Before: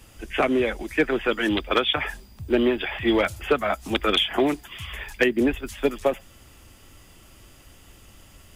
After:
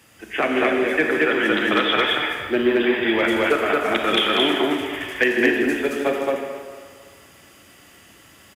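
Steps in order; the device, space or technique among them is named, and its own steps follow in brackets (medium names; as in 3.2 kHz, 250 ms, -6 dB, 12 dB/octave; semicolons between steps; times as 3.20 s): stadium PA (high-pass 150 Hz 12 dB/octave; peaking EQ 1.8 kHz +6 dB 0.7 oct; loudspeakers at several distances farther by 53 m -11 dB, 76 m -1 dB; reverberation RT60 1.9 s, pre-delay 28 ms, DRR 2.5 dB); trim -1.5 dB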